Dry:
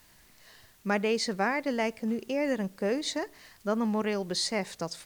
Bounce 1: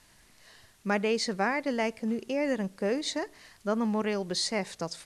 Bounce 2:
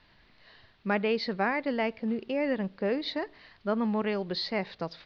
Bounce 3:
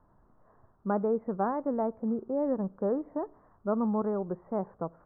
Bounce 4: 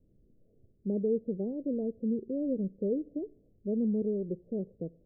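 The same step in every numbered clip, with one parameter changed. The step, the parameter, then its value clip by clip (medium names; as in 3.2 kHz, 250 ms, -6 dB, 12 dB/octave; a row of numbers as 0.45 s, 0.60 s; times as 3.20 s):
steep low-pass, frequency: 12 kHz, 4.5 kHz, 1.3 kHz, 510 Hz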